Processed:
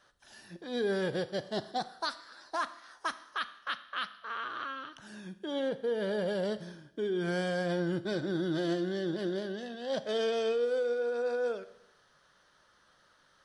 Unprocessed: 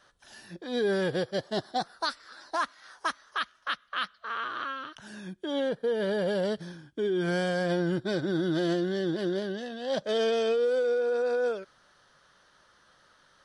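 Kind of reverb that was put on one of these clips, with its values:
four-comb reverb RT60 0.81 s, combs from 26 ms, DRR 13.5 dB
level −4 dB

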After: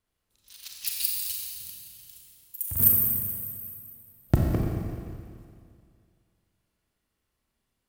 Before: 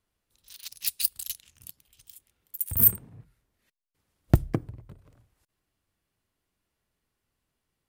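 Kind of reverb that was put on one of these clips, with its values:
four-comb reverb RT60 2.2 s, combs from 29 ms, DRR −1.5 dB
level −2.5 dB

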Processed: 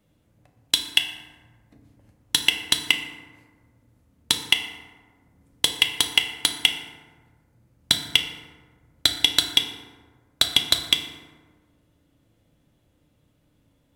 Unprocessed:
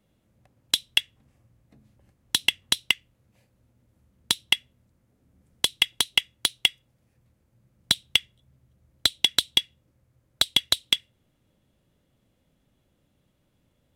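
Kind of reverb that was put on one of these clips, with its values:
feedback delay network reverb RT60 1.5 s, low-frequency decay 1.1×, high-frequency decay 0.45×, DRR 4 dB
level +2 dB

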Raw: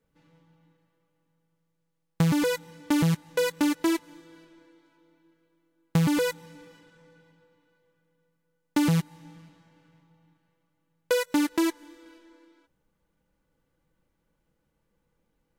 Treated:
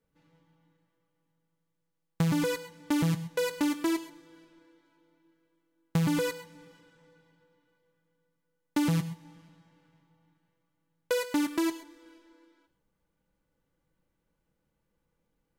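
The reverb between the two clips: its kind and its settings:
reverb whose tail is shaped and stops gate 150 ms rising, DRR 12 dB
level −4 dB

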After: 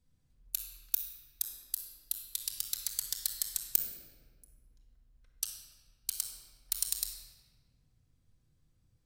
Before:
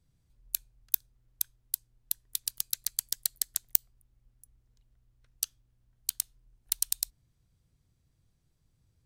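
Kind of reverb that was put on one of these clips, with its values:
rectangular room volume 2,000 cubic metres, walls mixed, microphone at 2 metres
level −4.5 dB

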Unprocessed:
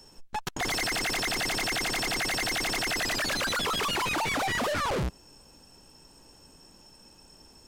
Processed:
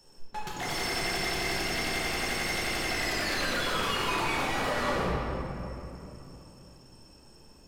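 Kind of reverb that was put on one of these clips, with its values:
rectangular room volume 140 cubic metres, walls hard, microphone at 0.89 metres
level −8 dB

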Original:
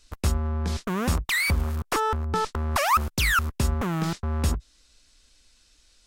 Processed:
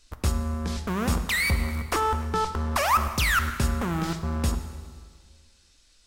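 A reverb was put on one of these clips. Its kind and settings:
dense smooth reverb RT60 1.8 s, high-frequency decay 0.85×, DRR 7.5 dB
level −1 dB

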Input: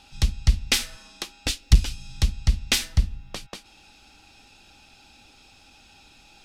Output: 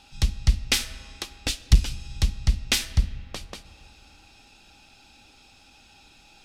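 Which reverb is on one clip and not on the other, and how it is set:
comb and all-pass reverb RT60 3 s, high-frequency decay 0.5×, pre-delay 20 ms, DRR 16.5 dB
level −1 dB

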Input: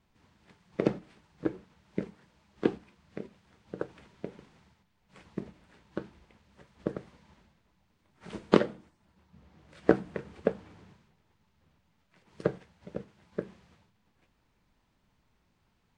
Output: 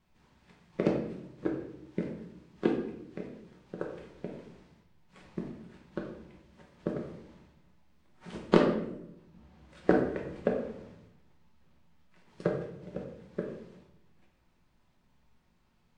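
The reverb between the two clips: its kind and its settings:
rectangular room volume 220 cubic metres, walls mixed, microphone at 1 metre
level −2.5 dB

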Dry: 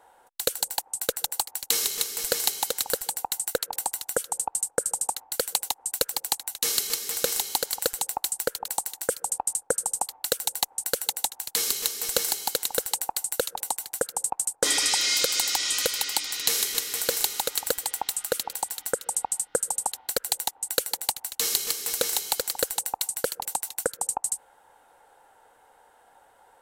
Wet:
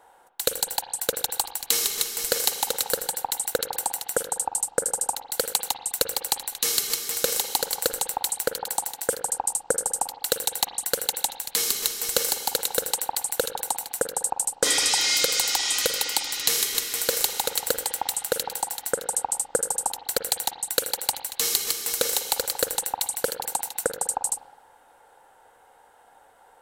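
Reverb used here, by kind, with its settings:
spring reverb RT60 1.1 s, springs 40/51 ms, chirp 20 ms, DRR 8.5 dB
level +1.5 dB

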